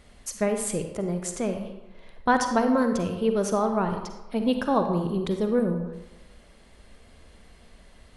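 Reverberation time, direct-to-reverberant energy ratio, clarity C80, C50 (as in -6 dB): 1.1 s, 5.5 dB, 8.5 dB, 6.5 dB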